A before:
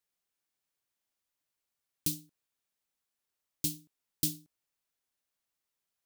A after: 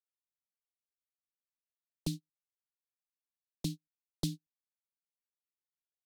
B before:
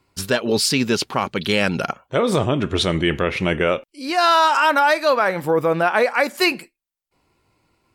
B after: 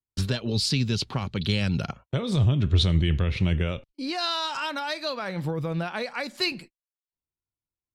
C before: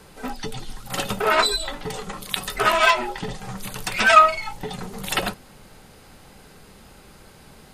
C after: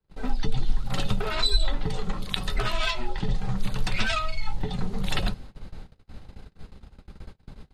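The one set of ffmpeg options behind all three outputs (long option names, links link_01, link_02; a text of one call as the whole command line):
ffmpeg -i in.wav -filter_complex "[0:a]aemphasis=mode=reproduction:type=bsi,agate=range=-38dB:threshold=-35dB:ratio=16:detection=peak,equalizer=frequency=4000:width=2.7:gain=5.5,acrossover=split=150|3000[link_01][link_02][link_03];[link_02]acompressor=threshold=-29dB:ratio=6[link_04];[link_01][link_04][link_03]amix=inputs=3:normalize=0,volume=-2dB" out.wav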